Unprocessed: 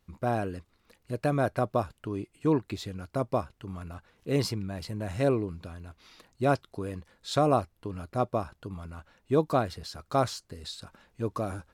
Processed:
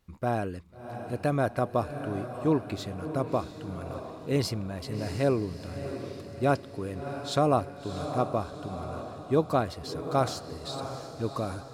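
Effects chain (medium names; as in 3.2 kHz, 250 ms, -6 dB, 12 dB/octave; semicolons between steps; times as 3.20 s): echo that smears into a reverb 669 ms, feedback 50%, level -9.5 dB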